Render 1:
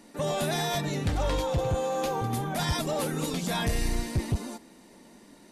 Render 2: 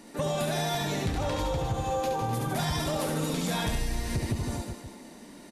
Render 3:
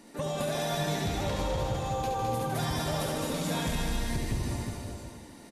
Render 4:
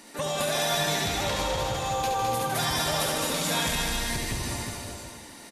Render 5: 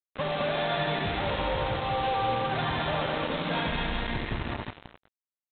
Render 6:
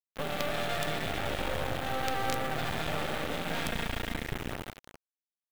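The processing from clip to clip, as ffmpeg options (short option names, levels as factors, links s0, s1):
-filter_complex "[0:a]asplit=2[s0][s1];[s1]aecho=0:1:70|154|254.8|375.8|520.9:0.631|0.398|0.251|0.158|0.1[s2];[s0][s2]amix=inputs=2:normalize=0,acompressor=threshold=0.0355:ratio=6,volume=1.41"
-af "aecho=1:1:210|357|459.9|531.9|582.4:0.631|0.398|0.251|0.158|0.1,volume=0.668"
-af "tiltshelf=f=650:g=-6,volume=1.5"
-af "lowpass=f=2000:p=1,aresample=8000,acrusher=bits=4:mix=0:aa=0.5,aresample=44100"
-af "acrusher=bits=4:dc=4:mix=0:aa=0.000001,equalizer=f=1000:w=7.2:g=-9.5"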